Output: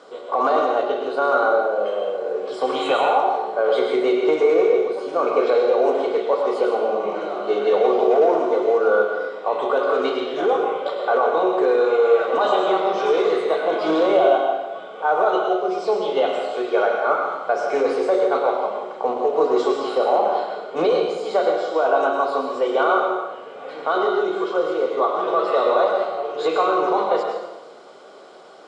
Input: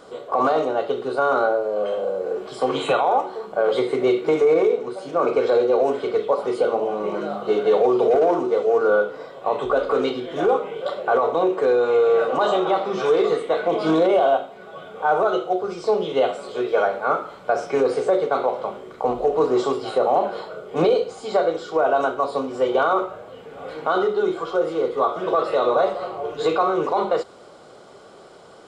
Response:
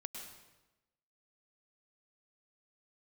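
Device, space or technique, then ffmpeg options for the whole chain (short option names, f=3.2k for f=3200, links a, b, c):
supermarket ceiling speaker: -filter_complex "[0:a]highpass=310,lowpass=6.8k[a];[1:a]atrim=start_sample=2205[b];[a][b]afir=irnorm=-1:irlink=0,volume=4.5dB"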